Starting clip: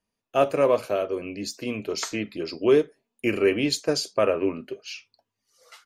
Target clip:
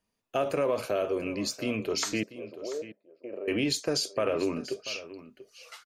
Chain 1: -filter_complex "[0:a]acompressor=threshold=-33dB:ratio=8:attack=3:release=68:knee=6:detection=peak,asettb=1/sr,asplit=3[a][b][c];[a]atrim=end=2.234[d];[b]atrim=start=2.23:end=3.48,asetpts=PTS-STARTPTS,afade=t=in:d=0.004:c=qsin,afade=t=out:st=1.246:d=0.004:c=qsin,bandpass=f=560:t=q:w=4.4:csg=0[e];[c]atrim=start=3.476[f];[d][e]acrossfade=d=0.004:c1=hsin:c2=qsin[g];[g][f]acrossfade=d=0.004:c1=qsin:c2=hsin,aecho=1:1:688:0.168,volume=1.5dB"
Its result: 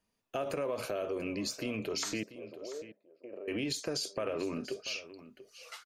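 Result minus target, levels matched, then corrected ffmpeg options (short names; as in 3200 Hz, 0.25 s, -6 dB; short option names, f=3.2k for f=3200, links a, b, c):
compressor: peak gain reduction +7.5 dB
-filter_complex "[0:a]acompressor=threshold=-24.5dB:ratio=8:attack=3:release=68:knee=6:detection=peak,asettb=1/sr,asplit=3[a][b][c];[a]atrim=end=2.234[d];[b]atrim=start=2.23:end=3.48,asetpts=PTS-STARTPTS,afade=t=in:d=0.004:c=qsin,afade=t=out:st=1.246:d=0.004:c=qsin,bandpass=f=560:t=q:w=4.4:csg=0[e];[c]atrim=start=3.476[f];[d][e]acrossfade=d=0.004:c1=hsin:c2=qsin[g];[g][f]acrossfade=d=0.004:c1=qsin:c2=hsin,aecho=1:1:688:0.168,volume=1.5dB"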